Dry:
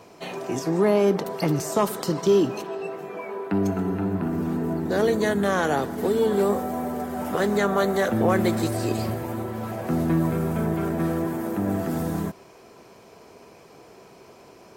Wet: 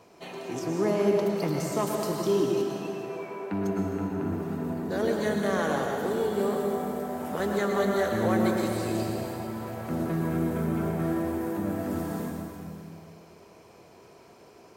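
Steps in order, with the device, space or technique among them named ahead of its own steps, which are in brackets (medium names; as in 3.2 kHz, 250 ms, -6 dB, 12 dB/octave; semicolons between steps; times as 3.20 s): stairwell (reverberation RT60 2.3 s, pre-delay 98 ms, DRR 0.5 dB); trim -7 dB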